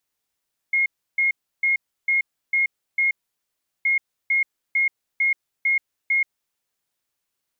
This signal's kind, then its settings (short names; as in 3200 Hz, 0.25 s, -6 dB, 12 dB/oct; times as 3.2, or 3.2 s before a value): beep pattern sine 2150 Hz, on 0.13 s, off 0.32 s, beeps 6, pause 0.74 s, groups 2, -16.5 dBFS